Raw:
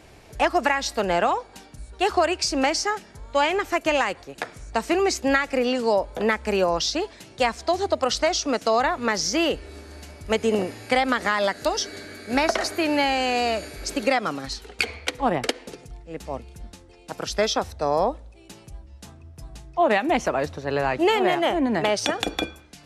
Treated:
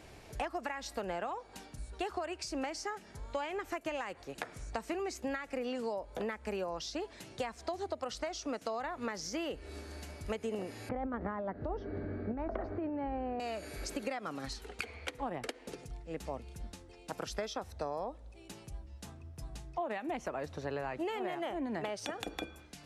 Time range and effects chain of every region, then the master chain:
10.89–13.40 s: low-pass 1.3 kHz + tilt EQ -3.5 dB/octave + compressor with a negative ratio -22 dBFS
whole clip: compression 6:1, threshold -30 dBFS; dynamic bell 4.6 kHz, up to -5 dB, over -48 dBFS, Q 0.85; trim -4.5 dB

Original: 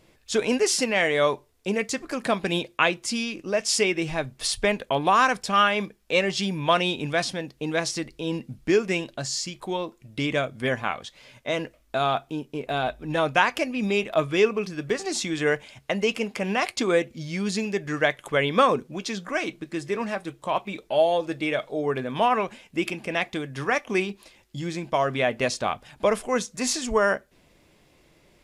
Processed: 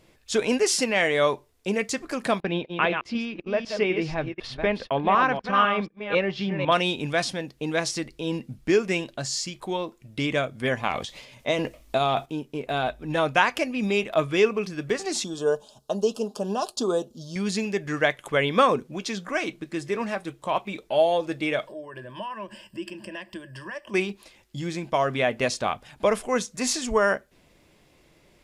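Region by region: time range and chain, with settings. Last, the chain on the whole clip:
2.40–6.72 s: chunks repeated in reverse 250 ms, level -6.5 dB + gate -35 dBFS, range -22 dB + distance through air 300 m
10.77–12.26 s: peaking EQ 1.5 kHz -7.5 dB 0.38 oct + transient shaper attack +4 dB, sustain +10 dB
15.24–17.36 s: Butterworth band-stop 2.1 kHz, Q 0.78 + tone controls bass -7 dB, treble -1 dB + comb 4.8 ms, depth 40%
21.67–23.94 s: compression 2.5:1, threshold -43 dBFS + rippled EQ curve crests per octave 1.3, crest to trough 16 dB
whole clip: none

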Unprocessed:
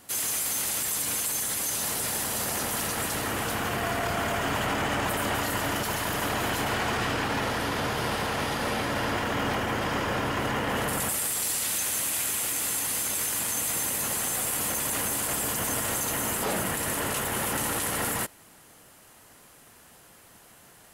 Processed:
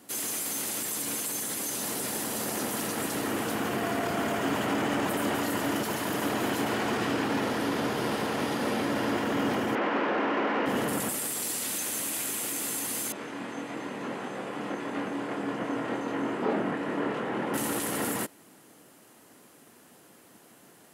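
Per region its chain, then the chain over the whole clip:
9.75–10.66 s: one-bit delta coder 16 kbps, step -32 dBFS + high-pass 200 Hz 24 dB/octave + overdrive pedal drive 14 dB, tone 2.4 kHz, clips at -18.5 dBFS
13.12–17.54 s: band-pass 140–2100 Hz + doubling 25 ms -4 dB
whole clip: high-pass 130 Hz 12 dB/octave; peaking EQ 290 Hz +9.5 dB 1.6 oct; trim -4 dB

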